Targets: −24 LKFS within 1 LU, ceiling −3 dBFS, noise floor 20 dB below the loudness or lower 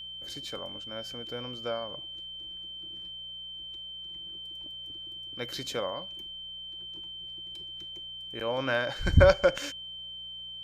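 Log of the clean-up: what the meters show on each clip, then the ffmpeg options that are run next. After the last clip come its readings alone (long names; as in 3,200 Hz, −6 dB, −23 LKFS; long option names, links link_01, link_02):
mains hum 60 Hz; hum harmonics up to 180 Hz; level of the hum −60 dBFS; interfering tone 3,100 Hz; level of the tone −39 dBFS; integrated loudness −32.5 LKFS; sample peak −7.0 dBFS; target loudness −24.0 LKFS
→ -af "bandreject=frequency=60:width_type=h:width=4,bandreject=frequency=120:width_type=h:width=4,bandreject=frequency=180:width_type=h:width=4"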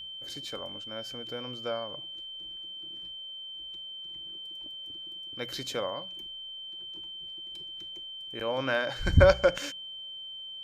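mains hum none found; interfering tone 3,100 Hz; level of the tone −39 dBFS
→ -af "bandreject=frequency=3100:width=30"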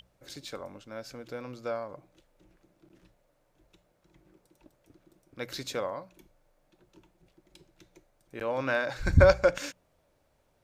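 interfering tone none found; integrated loudness −29.5 LKFS; sample peak −6.5 dBFS; target loudness −24.0 LKFS
→ -af "volume=5.5dB,alimiter=limit=-3dB:level=0:latency=1"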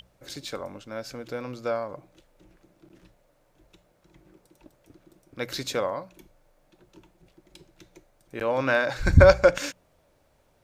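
integrated loudness −24.5 LKFS; sample peak −3.0 dBFS; background noise floor −65 dBFS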